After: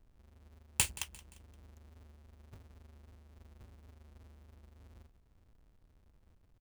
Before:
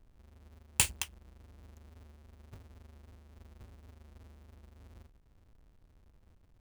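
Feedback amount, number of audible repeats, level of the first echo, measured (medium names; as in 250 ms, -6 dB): 43%, 3, -19.0 dB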